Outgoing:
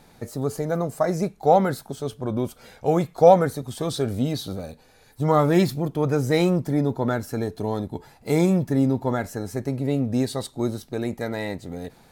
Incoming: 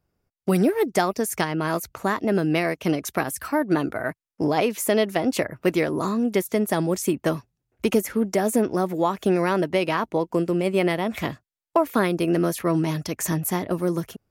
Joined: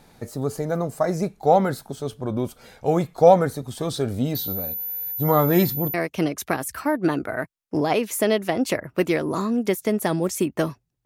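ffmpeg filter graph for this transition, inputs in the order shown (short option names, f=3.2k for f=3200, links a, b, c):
-filter_complex "[0:a]asettb=1/sr,asplit=3[a][b][c];[a]atrim=end=4.354[d];[b]atrim=start=4.35:end=5.94,asetpts=PTS-STARTPTS,afade=t=in:d=0.004:c=qsin,afade=t=out:st=1.586:d=0.004:c=qsin,aeval=exprs='val(0)+0.0447*sin(2*PI*14000*n/s)':c=same[e];[c]atrim=start=5.936[f];[d][e]acrossfade=d=0.004:c1=hsin:c2=qsin[g];[g][f]acrossfade=d=0.004:c1=qsin:c2=hsin,apad=whole_dur=11.05,atrim=end=11.05,atrim=end=5.942[h];[1:a]atrim=start=2.608:end=7.72[i];[h][i]acrossfade=d=0.004:c1=hsin:c2=hsin"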